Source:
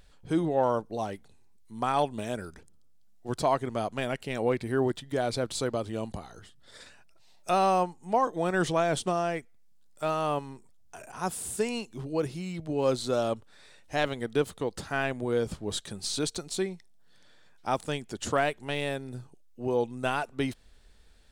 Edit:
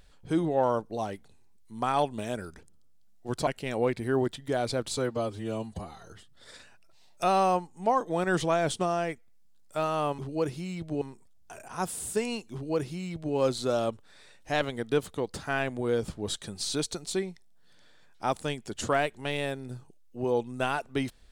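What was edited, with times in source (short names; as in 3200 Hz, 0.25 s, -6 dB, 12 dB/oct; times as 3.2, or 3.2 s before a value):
3.47–4.11 cut
5.61–6.36 stretch 1.5×
11.96–12.79 copy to 10.45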